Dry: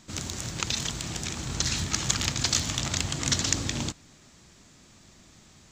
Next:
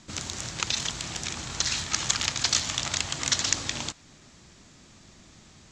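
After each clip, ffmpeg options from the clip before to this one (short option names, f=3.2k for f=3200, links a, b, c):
-filter_complex "[0:a]lowpass=8.1k,acrossover=split=550[a][b];[a]acompressor=threshold=-41dB:ratio=5[c];[c][b]amix=inputs=2:normalize=0,volume=2dB"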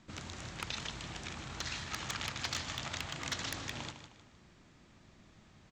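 -af "bass=f=250:g=0,treble=f=4k:g=-12,aecho=1:1:155|310|465|620:0.316|0.114|0.041|0.0148,aeval=exprs='0.141*(abs(mod(val(0)/0.141+3,4)-2)-1)':c=same,volume=-7dB"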